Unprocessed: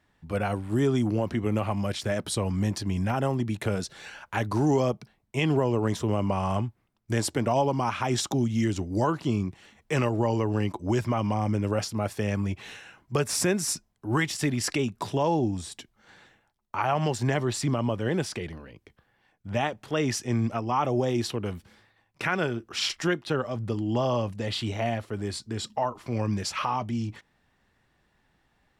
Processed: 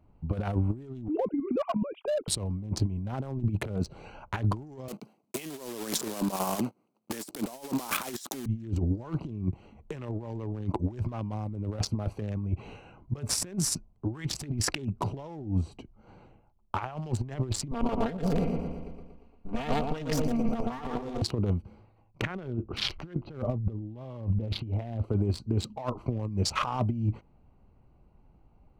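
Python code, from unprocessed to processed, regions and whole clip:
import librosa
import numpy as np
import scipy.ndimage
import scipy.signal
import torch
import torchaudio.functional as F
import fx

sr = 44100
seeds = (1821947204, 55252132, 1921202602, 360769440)

y = fx.chain(x, sr, fx.sine_speech(),
    fx.notch(hz=380.0, q=7.7),
    fx.level_steps(step_db=10), at=(1.08, 2.28))
y = fx.chain(y, sr, fx.block_float(bits=3),
    fx.highpass(hz=210.0, slope=24),
    fx.peak_eq(hz=12000.0, db=11.0, octaves=2.0), at=(4.88, 8.46))
y = fx.chain(y, sr, fx.lower_of_two(delay_ms=4.3),
    fx.echo_feedback(ms=117, feedback_pct=58, wet_db=-5.5), at=(17.71, 21.22))
y = fx.chain(y, sr, fx.lowpass(hz=5100.0, slope=24),
    fx.tilt_eq(slope=-1.5), at=(22.22, 25.04))
y = fx.wiener(y, sr, points=25)
y = fx.over_compress(y, sr, threshold_db=-32.0, ratio=-0.5)
y = fx.low_shelf(y, sr, hz=91.0, db=11.0)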